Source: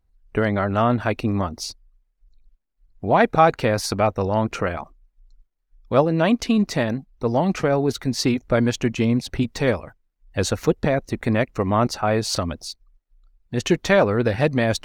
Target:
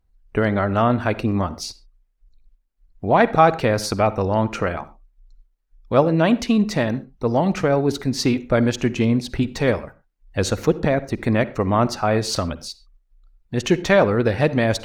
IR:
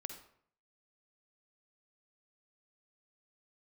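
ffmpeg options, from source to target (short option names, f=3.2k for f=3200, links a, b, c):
-filter_complex "[0:a]asplit=2[a][b];[1:a]atrim=start_sample=2205,afade=t=out:st=0.19:d=0.01,atrim=end_sample=8820,highshelf=f=6.2k:g=-9[c];[b][c]afir=irnorm=-1:irlink=0,volume=-2dB[d];[a][d]amix=inputs=2:normalize=0,volume=-2.5dB"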